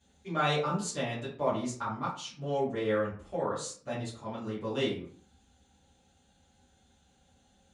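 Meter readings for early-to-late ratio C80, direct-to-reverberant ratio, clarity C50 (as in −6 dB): 10.0 dB, −10.5 dB, 5.5 dB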